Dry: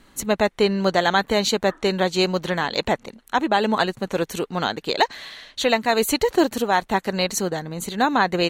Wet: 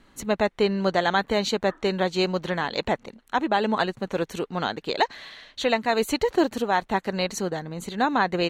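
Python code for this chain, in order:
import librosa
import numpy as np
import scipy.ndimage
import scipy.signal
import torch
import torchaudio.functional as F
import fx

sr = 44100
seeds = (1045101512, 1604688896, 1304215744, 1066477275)

y = fx.high_shelf(x, sr, hz=7200.0, db=-11.0)
y = y * librosa.db_to_amplitude(-3.0)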